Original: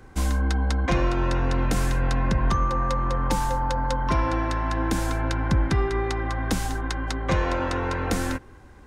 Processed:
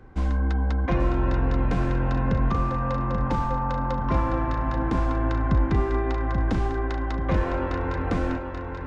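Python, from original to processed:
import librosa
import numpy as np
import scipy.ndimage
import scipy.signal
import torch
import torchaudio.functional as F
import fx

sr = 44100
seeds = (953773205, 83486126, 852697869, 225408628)

y = fx.spacing_loss(x, sr, db_at_10k=28)
y = fx.echo_feedback(y, sr, ms=834, feedback_pct=43, wet_db=-6.0)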